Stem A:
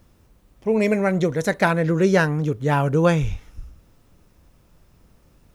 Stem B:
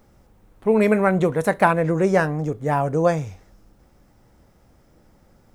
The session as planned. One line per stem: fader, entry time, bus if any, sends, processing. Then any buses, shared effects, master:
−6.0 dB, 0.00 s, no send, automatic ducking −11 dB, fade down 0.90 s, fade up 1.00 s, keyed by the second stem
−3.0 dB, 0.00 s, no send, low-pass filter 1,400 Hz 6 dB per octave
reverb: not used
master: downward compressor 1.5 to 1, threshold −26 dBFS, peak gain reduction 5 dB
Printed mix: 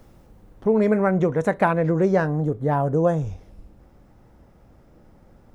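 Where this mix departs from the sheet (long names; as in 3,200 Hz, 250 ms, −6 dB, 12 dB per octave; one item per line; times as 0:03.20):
stem A −6.0 dB → +1.5 dB
stem B −3.0 dB → +3.5 dB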